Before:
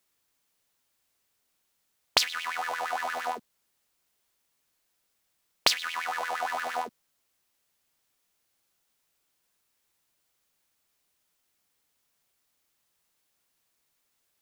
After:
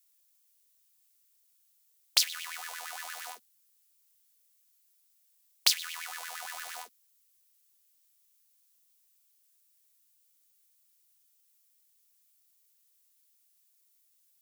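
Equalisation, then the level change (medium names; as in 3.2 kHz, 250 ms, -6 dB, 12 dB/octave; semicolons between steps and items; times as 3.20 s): differentiator; +3.5 dB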